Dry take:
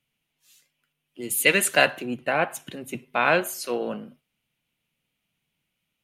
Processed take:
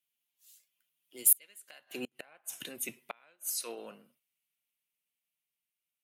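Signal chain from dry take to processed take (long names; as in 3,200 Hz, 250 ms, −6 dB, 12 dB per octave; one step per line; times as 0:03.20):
source passing by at 0:02.22, 13 m/s, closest 6 metres
gate with flip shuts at −22 dBFS, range −34 dB
RIAA equalisation recording
level −2 dB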